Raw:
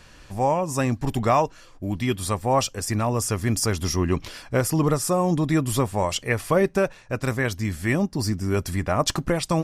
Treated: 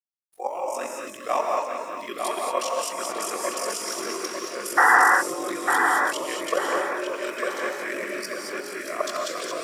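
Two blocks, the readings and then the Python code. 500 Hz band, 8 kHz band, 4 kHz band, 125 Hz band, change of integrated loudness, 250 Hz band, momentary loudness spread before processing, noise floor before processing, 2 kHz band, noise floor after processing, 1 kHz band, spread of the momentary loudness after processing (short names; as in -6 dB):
-3.5 dB, -1.5 dB, -2.0 dB, under -30 dB, -1.0 dB, -11.5 dB, 5 LU, -49 dBFS, +8.0 dB, -40 dBFS, +3.0 dB, 13 LU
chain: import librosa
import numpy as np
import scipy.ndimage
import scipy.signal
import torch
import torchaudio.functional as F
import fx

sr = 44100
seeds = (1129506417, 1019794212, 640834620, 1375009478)

y = fx.reverse_delay_fb(x, sr, ms=204, feedback_pct=48, wet_db=-3)
y = fx.noise_reduce_blind(y, sr, reduce_db=29)
y = scipy.signal.sosfilt(scipy.signal.butter(4, 390.0, 'highpass', fs=sr, output='sos'), y)
y = fx.notch(y, sr, hz=1000.0, q=23.0)
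y = fx.level_steps(y, sr, step_db=10)
y = fx.quant_dither(y, sr, seeds[0], bits=10, dither='none')
y = y * np.sin(2.0 * np.pi * 23.0 * np.arange(len(y)) / sr)
y = fx.spec_paint(y, sr, seeds[1], shape='noise', start_s=4.77, length_s=0.22, low_hz=700.0, high_hz=2000.0, level_db=-16.0)
y = fx.echo_filtered(y, sr, ms=901, feedback_pct=38, hz=3900.0, wet_db=-4.5)
y = fx.rev_gated(y, sr, seeds[2], gate_ms=250, shape='rising', drr_db=0.0)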